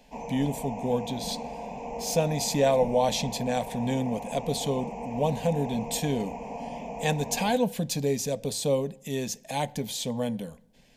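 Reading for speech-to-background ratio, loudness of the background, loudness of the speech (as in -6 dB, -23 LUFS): 9.0 dB, -37.5 LUFS, -28.5 LUFS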